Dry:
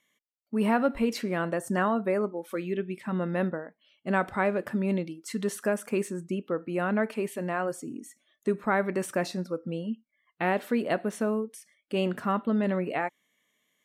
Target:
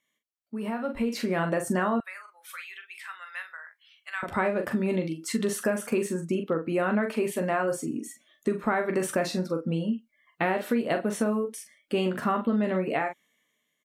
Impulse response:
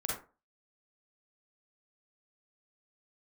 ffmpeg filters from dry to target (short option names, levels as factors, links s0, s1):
-filter_complex "[0:a]aecho=1:1:13|43:0.376|0.422,acompressor=threshold=0.0447:ratio=6,asettb=1/sr,asplit=3[s0][s1][s2];[s0]atrim=end=2.004[s3];[s1]atrim=start=2:end=4.23,asetpts=PTS-STARTPTS,afade=t=in:d=0.004:c=qsin,afade=t=out:st=2.226:d=0.004:c=qsin,highpass=f=1400:w=0.5412,highpass=f=1400:w=1.3066[s4];[s2]atrim=start=4.226[s5];[s3][s4]acrossfade=d=0.004:c1=hsin:c2=qsin[s6];[s6][s5]acrossfade=d=0.004:c1=qsin:c2=hsin,dynaudnorm=f=200:g=9:m=3.55,volume=0.501"